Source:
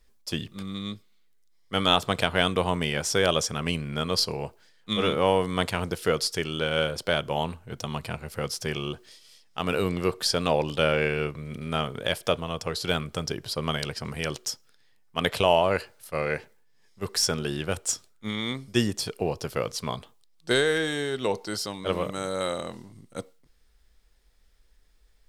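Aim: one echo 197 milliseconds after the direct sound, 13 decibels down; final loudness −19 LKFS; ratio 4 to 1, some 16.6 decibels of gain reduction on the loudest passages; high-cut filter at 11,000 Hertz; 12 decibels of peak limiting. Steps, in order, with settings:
low-pass filter 11,000 Hz
downward compressor 4 to 1, threshold −37 dBFS
brickwall limiter −30.5 dBFS
single-tap delay 197 ms −13 dB
level +24.5 dB

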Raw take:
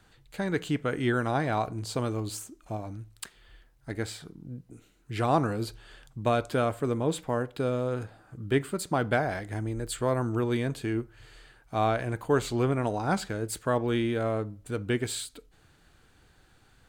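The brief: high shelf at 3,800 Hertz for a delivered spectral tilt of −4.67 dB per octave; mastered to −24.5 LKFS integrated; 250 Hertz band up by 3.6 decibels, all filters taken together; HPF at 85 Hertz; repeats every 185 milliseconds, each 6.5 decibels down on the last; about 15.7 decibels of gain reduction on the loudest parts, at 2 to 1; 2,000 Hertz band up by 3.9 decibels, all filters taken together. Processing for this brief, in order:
high-pass filter 85 Hz
parametric band 250 Hz +4.5 dB
parametric band 2,000 Hz +3.5 dB
high-shelf EQ 3,800 Hz +7.5 dB
downward compressor 2 to 1, threshold −47 dBFS
repeating echo 185 ms, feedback 47%, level −6.5 dB
level +16 dB

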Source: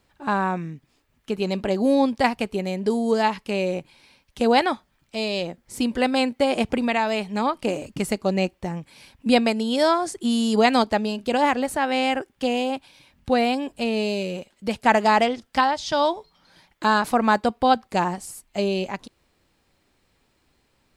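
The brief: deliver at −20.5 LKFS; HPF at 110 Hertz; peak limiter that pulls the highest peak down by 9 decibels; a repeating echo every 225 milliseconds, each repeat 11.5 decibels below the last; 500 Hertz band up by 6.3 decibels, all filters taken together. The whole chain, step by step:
high-pass filter 110 Hz
parametric band 500 Hz +7.5 dB
brickwall limiter −9 dBFS
repeating echo 225 ms, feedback 27%, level −11.5 dB
level +0.5 dB

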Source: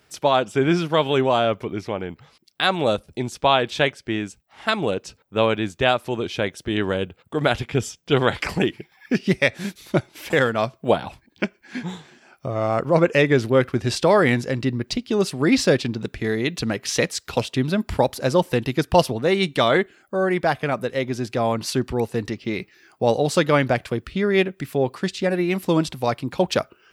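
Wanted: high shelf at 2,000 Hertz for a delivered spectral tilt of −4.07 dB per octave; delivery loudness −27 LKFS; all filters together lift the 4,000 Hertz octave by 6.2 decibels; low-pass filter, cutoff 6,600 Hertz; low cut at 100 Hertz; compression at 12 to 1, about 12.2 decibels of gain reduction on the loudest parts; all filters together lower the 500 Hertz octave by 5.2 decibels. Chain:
high-pass filter 100 Hz
low-pass filter 6,600 Hz
parametric band 500 Hz −7 dB
high-shelf EQ 2,000 Hz +5 dB
parametric band 4,000 Hz +3.5 dB
downward compressor 12 to 1, threshold −24 dBFS
level +3 dB

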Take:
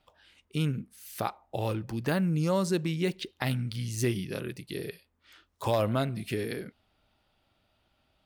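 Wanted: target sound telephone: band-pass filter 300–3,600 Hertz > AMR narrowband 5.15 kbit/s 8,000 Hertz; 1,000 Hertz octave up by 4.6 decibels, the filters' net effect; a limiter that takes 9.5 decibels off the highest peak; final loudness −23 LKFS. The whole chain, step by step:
parametric band 1,000 Hz +6 dB
brickwall limiter −19.5 dBFS
band-pass filter 300–3,600 Hz
level +14.5 dB
AMR narrowband 5.15 kbit/s 8,000 Hz

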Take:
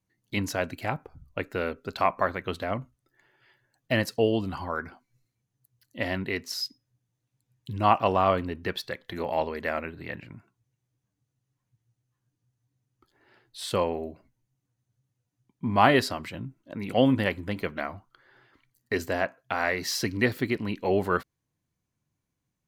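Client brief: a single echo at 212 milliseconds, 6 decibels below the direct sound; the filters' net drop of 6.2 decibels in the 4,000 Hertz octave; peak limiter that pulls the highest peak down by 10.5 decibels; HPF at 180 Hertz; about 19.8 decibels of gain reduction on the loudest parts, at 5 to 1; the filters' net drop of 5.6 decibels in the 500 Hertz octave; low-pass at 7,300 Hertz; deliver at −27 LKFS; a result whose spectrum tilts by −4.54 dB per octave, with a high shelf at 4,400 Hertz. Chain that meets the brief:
high-pass filter 180 Hz
low-pass filter 7,300 Hz
parametric band 500 Hz −7 dB
parametric band 4,000 Hz −3.5 dB
high-shelf EQ 4,400 Hz −8 dB
downward compressor 5 to 1, threshold −40 dBFS
brickwall limiter −32.5 dBFS
single-tap delay 212 ms −6 dB
level +19 dB

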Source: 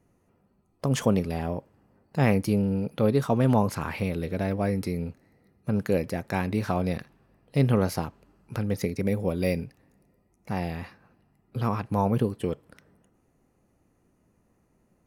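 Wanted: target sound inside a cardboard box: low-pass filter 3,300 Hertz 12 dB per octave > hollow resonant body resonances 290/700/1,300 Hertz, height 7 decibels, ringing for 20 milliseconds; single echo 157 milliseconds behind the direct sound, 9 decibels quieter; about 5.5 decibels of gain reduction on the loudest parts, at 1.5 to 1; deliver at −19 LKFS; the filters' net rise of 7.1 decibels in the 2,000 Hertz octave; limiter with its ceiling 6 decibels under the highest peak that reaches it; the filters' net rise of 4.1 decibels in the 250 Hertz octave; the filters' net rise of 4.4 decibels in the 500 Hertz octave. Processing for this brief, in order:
parametric band 250 Hz +4.5 dB
parametric band 500 Hz +3.5 dB
parametric band 2,000 Hz +9 dB
downward compressor 1.5 to 1, threshold −28 dBFS
brickwall limiter −15 dBFS
low-pass filter 3,300 Hz 12 dB per octave
single-tap delay 157 ms −9 dB
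hollow resonant body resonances 290/700/1,300 Hz, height 7 dB, ringing for 20 ms
level +7 dB

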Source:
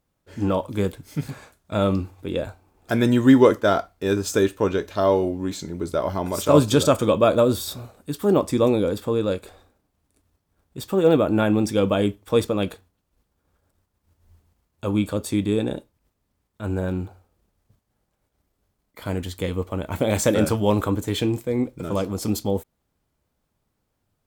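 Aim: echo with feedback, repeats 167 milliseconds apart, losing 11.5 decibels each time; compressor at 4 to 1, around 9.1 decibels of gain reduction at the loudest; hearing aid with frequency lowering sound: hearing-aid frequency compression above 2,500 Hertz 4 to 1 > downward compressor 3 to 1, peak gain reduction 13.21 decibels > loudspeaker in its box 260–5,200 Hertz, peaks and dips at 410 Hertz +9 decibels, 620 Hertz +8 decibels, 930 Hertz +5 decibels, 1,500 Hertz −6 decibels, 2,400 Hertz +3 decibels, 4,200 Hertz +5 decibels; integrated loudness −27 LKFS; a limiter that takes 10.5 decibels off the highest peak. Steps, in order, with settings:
downward compressor 4 to 1, threshold −20 dBFS
brickwall limiter −20.5 dBFS
repeating echo 167 ms, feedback 27%, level −11.5 dB
hearing-aid frequency compression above 2,500 Hz 4 to 1
downward compressor 3 to 1, threshold −41 dBFS
loudspeaker in its box 260–5,200 Hz, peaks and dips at 410 Hz +9 dB, 620 Hz +8 dB, 930 Hz +5 dB, 1,500 Hz −6 dB, 2,400 Hz +3 dB, 4,200 Hz +5 dB
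level +11.5 dB

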